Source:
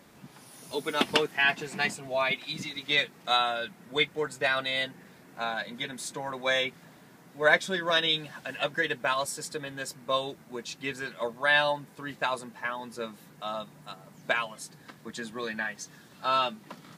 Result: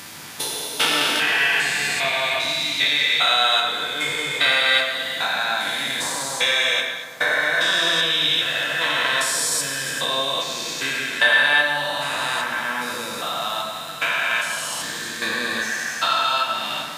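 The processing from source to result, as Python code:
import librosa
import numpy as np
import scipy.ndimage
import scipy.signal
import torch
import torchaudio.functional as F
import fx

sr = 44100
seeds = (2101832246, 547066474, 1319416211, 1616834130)

p1 = fx.spec_steps(x, sr, hold_ms=400)
p2 = fx.rider(p1, sr, range_db=10, speed_s=0.5)
p3 = p1 + (p2 * 10.0 ** (-1.5 / 20.0))
p4 = fx.transient(p3, sr, attack_db=5, sustain_db=-1)
p5 = fx.tilt_shelf(p4, sr, db=-9.5, hz=1200.0)
p6 = p5 + fx.echo_stepped(p5, sr, ms=114, hz=2600.0, octaves=0.7, feedback_pct=70, wet_db=-8.5, dry=0)
p7 = fx.rev_fdn(p6, sr, rt60_s=1.7, lf_ratio=0.9, hf_ratio=0.35, size_ms=60.0, drr_db=-0.5)
y = p7 * 10.0 ** (3.5 / 20.0)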